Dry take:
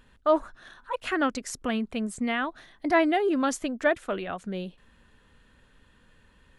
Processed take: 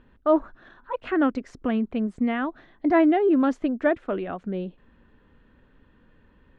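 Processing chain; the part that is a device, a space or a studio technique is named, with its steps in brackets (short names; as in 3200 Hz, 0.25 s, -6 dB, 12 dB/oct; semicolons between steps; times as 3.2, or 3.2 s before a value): phone in a pocket (LPF 3300 Hz 12 dB/oct; bell 300 Hz +5.5 dB 1 oct; high shelf 2000 Hz -9 dB); gain +1.5 dB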